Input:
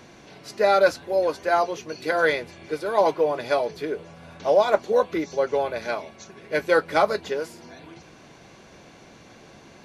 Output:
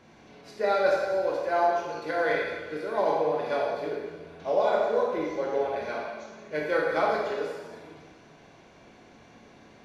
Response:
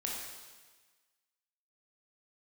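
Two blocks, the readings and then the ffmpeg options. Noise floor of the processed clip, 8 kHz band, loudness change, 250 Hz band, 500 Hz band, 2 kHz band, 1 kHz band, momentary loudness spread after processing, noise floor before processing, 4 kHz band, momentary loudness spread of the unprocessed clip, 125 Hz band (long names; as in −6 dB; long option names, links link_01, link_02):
−54 dBFS, can't be measured, −4.0 dB, −4.0 dB, −4.0 dB, −4.5 dB, −3.5 dB, 11 LU, −49 dBFS, −7.0 dB, 12 LU, −4.5 dB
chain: -filter_complex "[0:a]highshelf=frequency=5000:gain=-9.5[link_01];[1:a]atrim=start_sample=2205[link_02];[link_01][link_02]afir=irnorm=-1:irlink=0,volume=-6dB"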